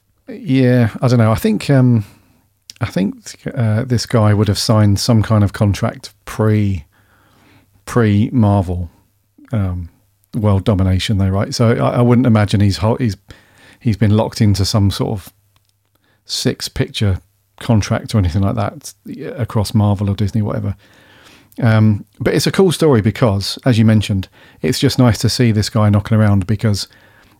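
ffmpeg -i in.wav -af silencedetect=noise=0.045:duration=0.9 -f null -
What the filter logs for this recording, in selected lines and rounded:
silence_start: 6.80
silence_end: 7.88 | silence_duration: 1.08
silence_start: 15.28
silence_end: 16.29 | silence_duration: 1.01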